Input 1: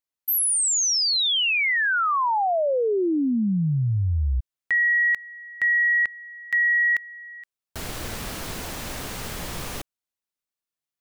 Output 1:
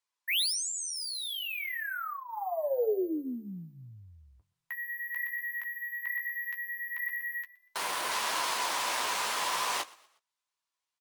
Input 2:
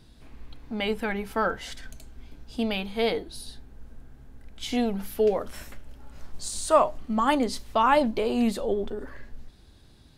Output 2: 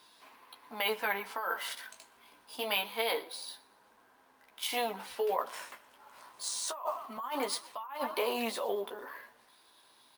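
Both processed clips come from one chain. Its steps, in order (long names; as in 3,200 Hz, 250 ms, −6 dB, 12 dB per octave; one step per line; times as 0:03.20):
band-pass filter 690–7,100 Hz
high-shelf EQ 3,500 Hz +3.5 dB
bad sample-rate conversion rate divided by 3×, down none, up hold
parametric band 1,000 Hz +11.5 dB 0.25 octaves
on a send: echo with shifted repeats 120 ms, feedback 41%, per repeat +30 Hz, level −22 dB
on the sum: compressor whose output falls as the input rises −30 dBFS, ratio −1
flanger 0.26 Hz, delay 9.5 ms, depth 9.2 ms, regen −23%
Opus 48 kbit/s 48,000 Hz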